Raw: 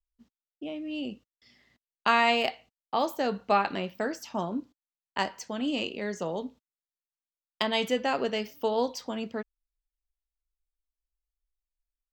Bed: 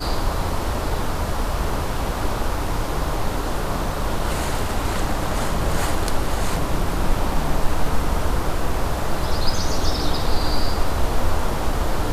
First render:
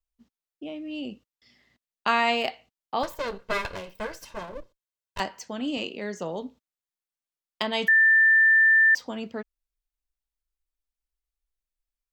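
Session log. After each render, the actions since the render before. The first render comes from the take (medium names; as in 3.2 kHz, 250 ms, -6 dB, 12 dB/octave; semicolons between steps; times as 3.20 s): 3.03–5.20 s: comb filter that takes the minimum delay 1.9 ms; 5.77–6.19 s: high-pass 110 Hz; 7.88–8.95 s: bleep 1.78 kHz -14.5 dBFS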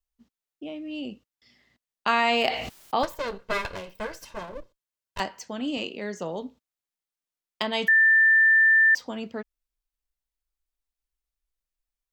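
2.13–3.05 s: level flattener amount 70%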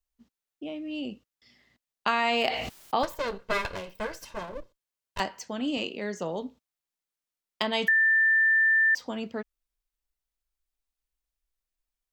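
compression, threshold -20 dBFS, peak gain reduction 4 dB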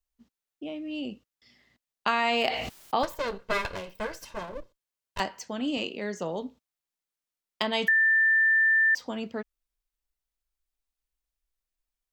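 no audible change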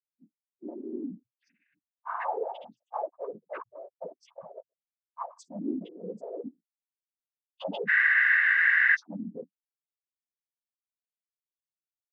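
loudest bins only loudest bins 2; noise-vocoded speech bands 16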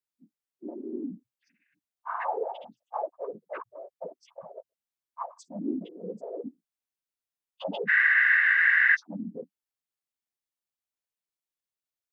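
trim +1 dB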